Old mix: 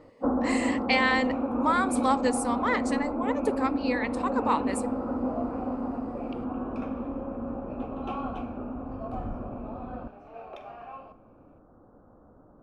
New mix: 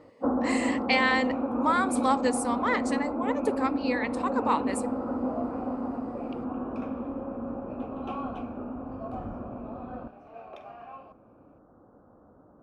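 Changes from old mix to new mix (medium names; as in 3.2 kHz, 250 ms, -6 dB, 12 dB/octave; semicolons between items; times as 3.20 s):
second sound: send off; master: add high-pass 91 Hz 6 dB/octave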